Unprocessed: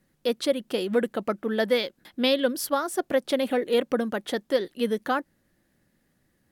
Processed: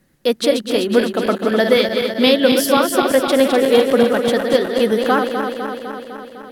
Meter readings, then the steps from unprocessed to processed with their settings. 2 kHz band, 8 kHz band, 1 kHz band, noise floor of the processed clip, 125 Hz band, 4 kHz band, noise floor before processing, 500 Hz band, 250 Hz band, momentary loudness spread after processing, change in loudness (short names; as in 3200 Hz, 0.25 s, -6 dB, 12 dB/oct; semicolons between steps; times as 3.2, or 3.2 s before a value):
+11.0 dB, +10.5 dB, +11.0 dB, -39 dBFS, n/a, +10.5 dB, -70 dBFS, +10.5 dB, +11.0 dB, 12 LU, +10.5 dB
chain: regenerating reverse delay 0.126 s, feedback 81%, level -6 dB; gain +8.5 dB